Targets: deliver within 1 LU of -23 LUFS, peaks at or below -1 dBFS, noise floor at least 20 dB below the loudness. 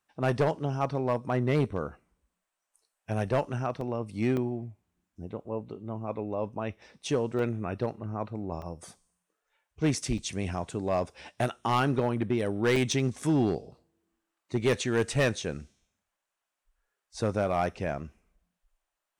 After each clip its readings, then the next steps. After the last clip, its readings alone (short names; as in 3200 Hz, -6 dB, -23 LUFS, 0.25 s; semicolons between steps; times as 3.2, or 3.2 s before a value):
clipped 0.7%; flat tops at -19.0 dBFS; dropouts 6; longest dropout 2.5 ms; loudness -30.0 LUFS; peak -19.0 dBFS; loudness target -23.0 LUFS
-> clip repair -19 dBFS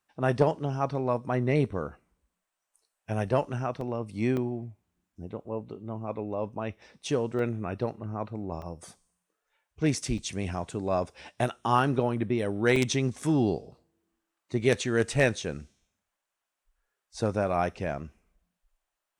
clipped 0.0%; dropouts 6; longest dropout 2.5 ms
-> interpolate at 3.81/4.37/7.39/8.62/10.18/12.76, 2.5 ms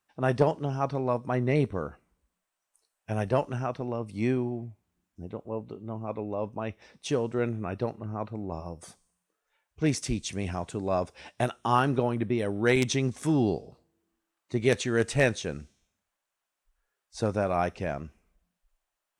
dropouts 0; loudness -29.5 LUFS; peak -10.0 dBFS; loudness target -23.0 LUFS
-> gain +6.5 dB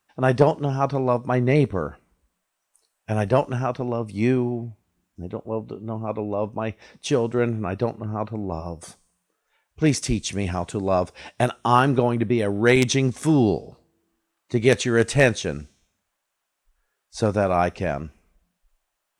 loudness -23.0 LUFS; peak -3.5 dBFS; noise floor -79 dBFS